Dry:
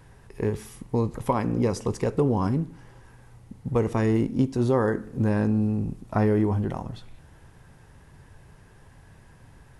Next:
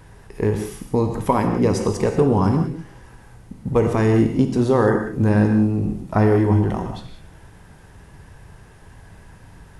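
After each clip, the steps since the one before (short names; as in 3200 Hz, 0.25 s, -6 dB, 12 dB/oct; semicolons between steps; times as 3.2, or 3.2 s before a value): non-linear reverb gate 0.21 s flat, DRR 4.5 dB; gain +5.5 dB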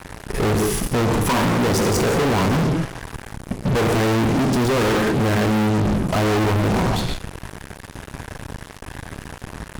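in parallel at +1 dB: level quantiser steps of 10 dB; on the sum: fuzz box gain 33 dB, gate -38 dBFS; gain -4 dB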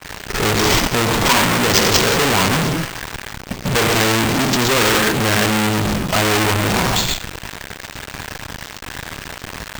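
tilt shelf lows -7 dB, about 1300 Hz; careless resampling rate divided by 4×, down none, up hold; expander -37 dBFS; gain +6 dB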